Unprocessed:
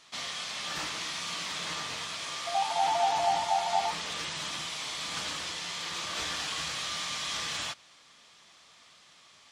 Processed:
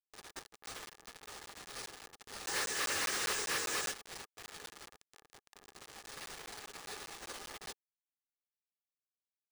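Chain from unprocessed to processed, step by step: spectral gate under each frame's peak -30 dB weak; 4.89–5.55 s: treble shelf 4 kHz -4.5 dB; bit crusher 10-bit; overdrive pedal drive 33 dB, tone 6.9 kHz, clips at -30 dBFS; small resonant body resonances 430/810/1200/1700 Hz, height 10 dB, ringing for 20 ms; careless resampling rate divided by 3×, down none, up hold; crackling interface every 0.20 s, samples 512, zero, from 0.66 s

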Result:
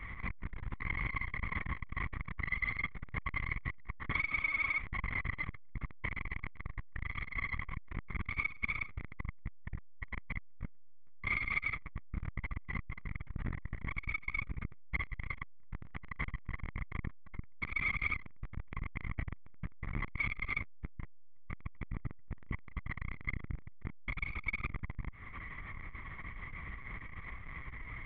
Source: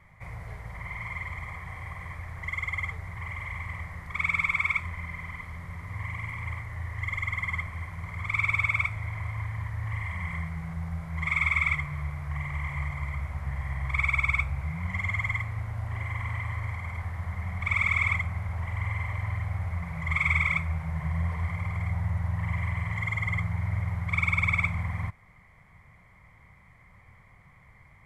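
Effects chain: high-order bell 620 Hz -13.5 dB 1.1 oct; compression 10:1, threshold -41 dBFS, peak gain reduction 20 dB; LPC vocoder at 8 kHz pitch kept; transformer saturation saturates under 260 Hz; trim +13 dB

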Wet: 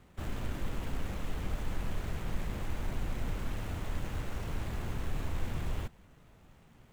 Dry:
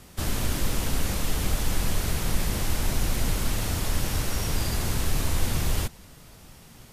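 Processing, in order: median filter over 9 samples; trim -9 dB

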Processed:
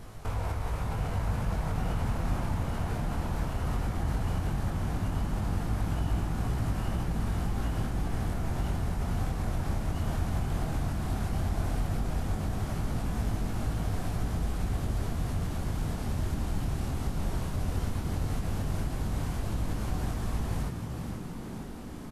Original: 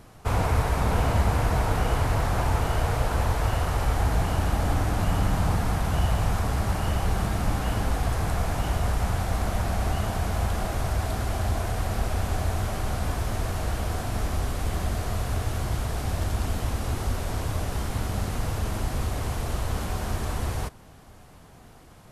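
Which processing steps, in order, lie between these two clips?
bass shelf 61 Hz +10.5 dB; compression 2:1, threshold -37 dBFS, peak gain reduction 13.5 dB; peak limiter -24.5 dBFS, peak gain reduction 5 dB; chorus 0.15 Hz, delay 19 ms, depth 6.3 ms; frequency-shifting echo 478 ms, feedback 62%, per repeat +60 Hz, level -7 dB; trim +4.5 dB

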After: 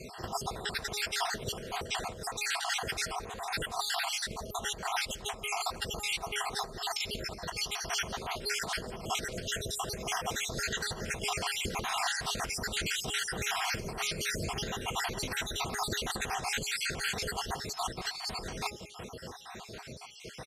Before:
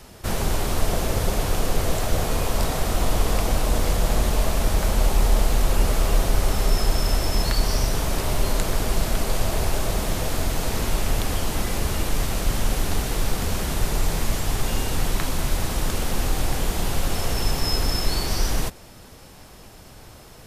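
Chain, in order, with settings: random holes in the spectrogram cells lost 58%; high-pass 200 Hz 6 dB/octave; de-hum 414.8 Hz, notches 3; compressor with a negative ratio -36 dBFS, ratio -0.5; distance through air 58 m; comb of notches 290 Hz; on a send: delay 171 ms -24 dB; on the sum: trim +4.5 dB

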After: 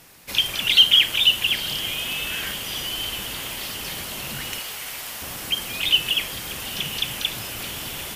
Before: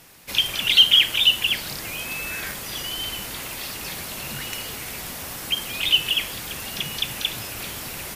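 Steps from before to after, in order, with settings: 4.59–5.22 s: high-pass 630 Hz 12 dB/octave; on a send: echo that smears into a reverb 923 ms, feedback 58%, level -13 dB

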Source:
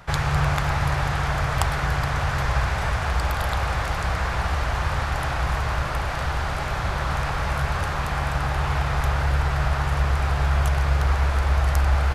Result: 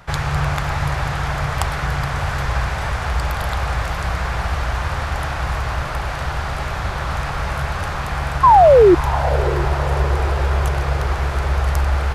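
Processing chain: painted sound fall, 8.43–8.95 s, 330–1100 Hz -10 dBFS; echo that smears into a reverb 649 ms, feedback 62%, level -13 dB; trim +1.5 dB

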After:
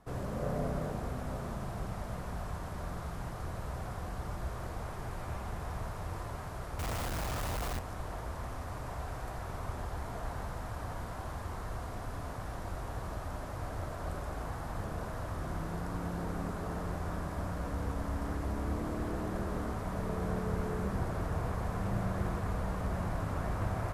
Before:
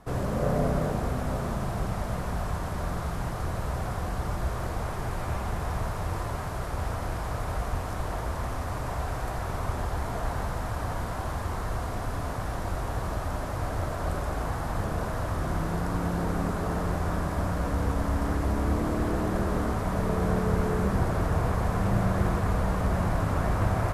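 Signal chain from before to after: 6.79–7.79 s: companded quantiser 2-bit; trim -8.5 dB

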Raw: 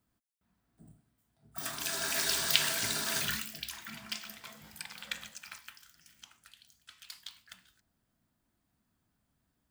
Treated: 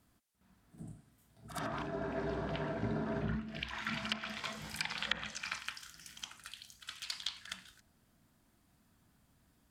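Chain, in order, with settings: low-pass that closes with the level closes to 560 Hz, closed at -33.5 dBFS; reverse echo 64 ms -10.5 dB; trim +8 dB

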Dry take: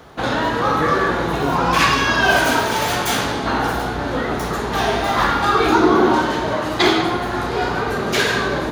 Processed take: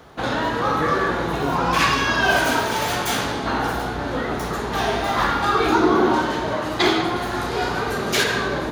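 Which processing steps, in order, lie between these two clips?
7.16–8.24 s: treble shelf 3.9 kHz +6.5 dB; trim -3 dB

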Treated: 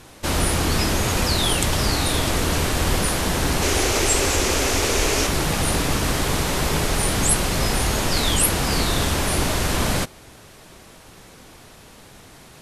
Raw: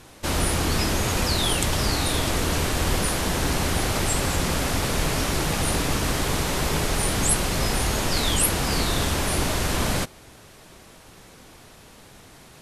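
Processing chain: 3.62–5.27 s: fifteen-band graphic EQ 160 Hz -12 dB, 400 Hz +7 dB, 2.5 kHz +4 dB, 6.3 kHz +7 dB; trim +2.5 dB

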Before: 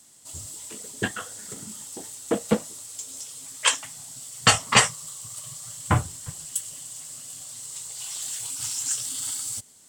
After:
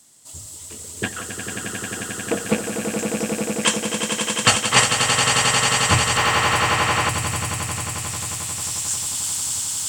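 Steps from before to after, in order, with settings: rattle on loud lows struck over -24 dBFS, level -14 dBFS; echo with a slow build-up 89 ms, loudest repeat 8, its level -7 dB; 6.17–7.09 s: overdrive pedal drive 19 dB, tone 1.7 kHz, clips at -7.5 dBFS; trim +1 dB

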